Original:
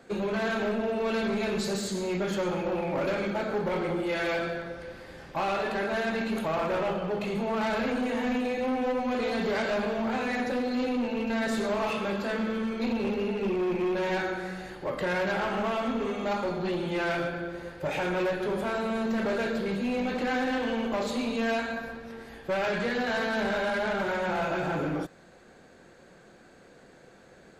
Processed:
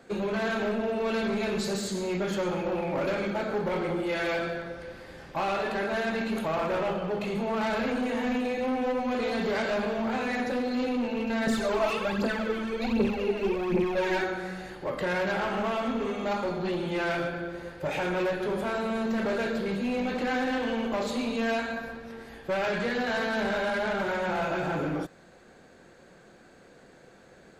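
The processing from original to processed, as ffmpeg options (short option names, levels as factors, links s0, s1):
-filter_complex "[0:a]asettb=1/sr,asplit=3[s0][s1][s2];[s0]atrim=end=11.474[s3];[s1]atrim=start=11.47:end=14.24,asetpts=PTS-STARTPTS,afade=t=in:d=0.004:c=qsin,afade=t=out:st=2.766:d=0.004:c=qsin,aphaser=in_gain=1:out_gain=1:delay=3.3:decay=0.61:speed=1.3:type=triangular[s4];[s2]atrim=start=14.236[s5];[s3][s4]acrossfade=d=0.004:c1=hsin:c2=qsin[s6];[s6][s5]acrossfade=d=0.004:c1=qsin:c2=hsin"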